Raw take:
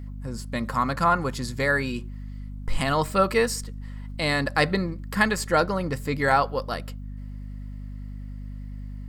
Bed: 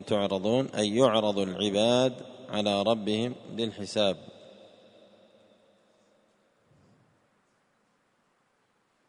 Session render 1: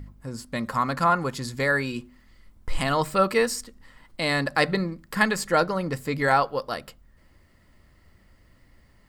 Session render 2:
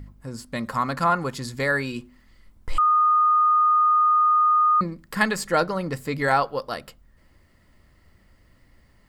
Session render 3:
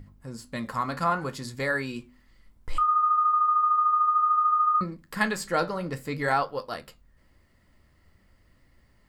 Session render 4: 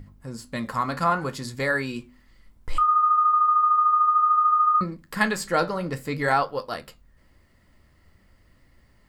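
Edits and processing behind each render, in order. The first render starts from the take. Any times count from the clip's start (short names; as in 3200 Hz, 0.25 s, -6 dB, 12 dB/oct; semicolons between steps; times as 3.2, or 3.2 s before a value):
de-hum 50 Hz, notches 5
2.78–4.81 bleep 1230 Hz -15 dBFS
flange 0.61 Hz, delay 9.7 ms, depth 9 ms, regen -63%
gain +3 dB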